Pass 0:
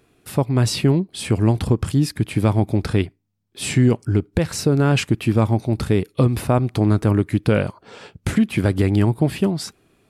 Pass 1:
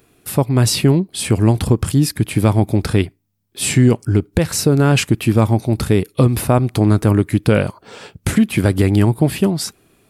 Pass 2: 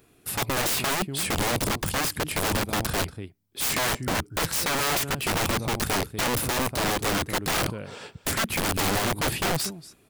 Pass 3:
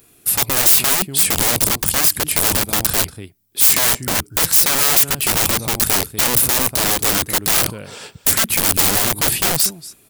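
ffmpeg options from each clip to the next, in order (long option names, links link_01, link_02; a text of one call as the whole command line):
ffmpeg -i in.wav -af "highshelf=frequency=9500:gain=12,volume=3.5dB" out.wav
ffmpeg -i in.wav -af "aecho=1:1:236:0.126,aeval=exprs='(mod(5.96*val(0)+1,2)-1)/5.96':channel_layout=same,volume=-4.5dB" out.wav
ffmpeg -i in.wav -af "crystalizer=i=2.5:c=0,volume=3dB" out.wav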